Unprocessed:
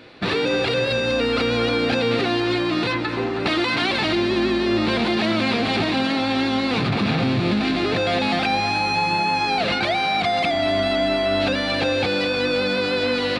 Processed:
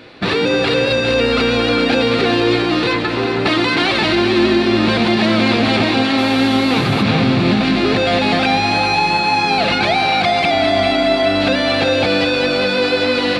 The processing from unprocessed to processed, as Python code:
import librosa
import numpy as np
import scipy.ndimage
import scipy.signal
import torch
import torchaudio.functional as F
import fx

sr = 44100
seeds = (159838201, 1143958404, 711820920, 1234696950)

y = fx.echo_split(x, sr, split_hz=350.0, low_ms=190, high_ms=404, feedback_pct=52, wet_db=-7.5)
y = fx.dmg_buzz(y, sr, base_hz=400.0, harmonics=31, level_db=-39.0, tilt_db=-5, odd_only=False, at=(6.17, 7.01), fade=0.02)
y = F.gain(torch.from_numpy(y), 5.0).numpy()